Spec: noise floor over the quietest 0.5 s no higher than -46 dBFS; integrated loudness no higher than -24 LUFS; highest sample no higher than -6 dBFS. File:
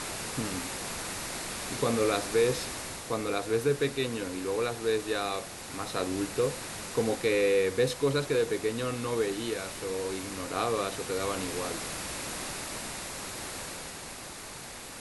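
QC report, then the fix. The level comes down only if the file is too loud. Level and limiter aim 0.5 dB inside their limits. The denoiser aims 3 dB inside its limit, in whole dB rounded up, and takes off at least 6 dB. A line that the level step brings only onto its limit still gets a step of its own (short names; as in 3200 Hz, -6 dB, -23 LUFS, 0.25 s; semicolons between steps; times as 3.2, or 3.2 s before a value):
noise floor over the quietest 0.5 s -43 dBFS: fail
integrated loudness -31.0 LUFS: OK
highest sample -14.5 dBFS: OK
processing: denoiser 6 dB, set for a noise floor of -43 dBFS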